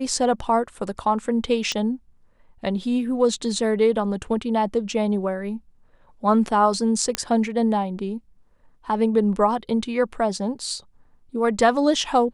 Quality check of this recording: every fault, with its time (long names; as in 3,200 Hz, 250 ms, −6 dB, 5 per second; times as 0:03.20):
0:01.72: click −11 dBFS
0:07.15: click −6 dBFS